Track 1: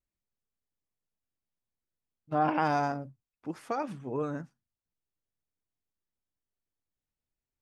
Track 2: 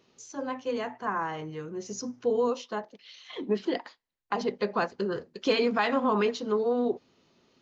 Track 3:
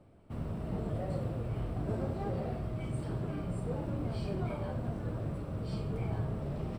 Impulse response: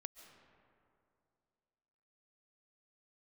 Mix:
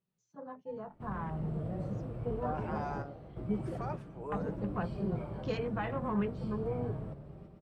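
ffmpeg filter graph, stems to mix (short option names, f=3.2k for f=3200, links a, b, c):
-filter_complex "[0:a]highpass=510,alimiter=level_in=1dB:limit=-24dB:level=0:latency=1:release=122,volume=-1dB,adelay=100,volume=0dB[a];[1:a]afwtdn=0.02,lowshelf=f=220:t=q:w=3:g=7.5,volume=-5dB,asplit=2[b][c];[2:a]adelay=700,volume=0dB,asplit=2[d][e];[e]volume=-14dB[f];[c]apad=whole_len=330024[g];[d][g]sidechaingate=range=-10dB:threshold=-60dB:ratio=16:detection=peak[h];[f]aecho=0:1:117|234|351|468|585|702|819|936:1|0.52|0.27|0.141|0.0731|0.038|0.0198|0.0103[i];[a][b][h][i]amix=inputs=4:normalize=0,highshelf=f=2.5k:g=-9,flanger=delay=5.2:depth=1.3:regen=-57:speed=0.8:shape=sinusoidal"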